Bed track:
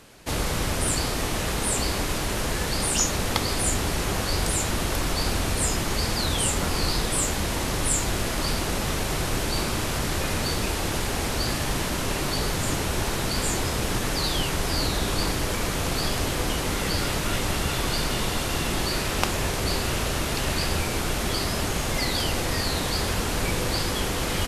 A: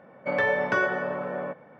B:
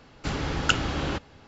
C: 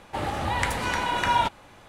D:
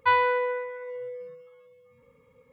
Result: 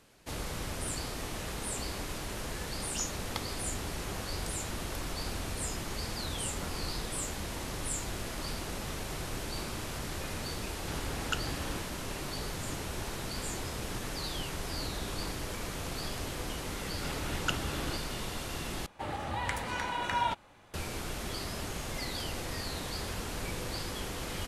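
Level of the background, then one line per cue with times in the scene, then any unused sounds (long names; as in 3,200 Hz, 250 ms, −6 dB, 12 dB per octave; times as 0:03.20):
bed track −11.5 dB
0:10.63: mix in B −11.5 dB
0:16.79: mix in B −10 dB
0:18.86: overwrite with C −8 dB
not used: A, D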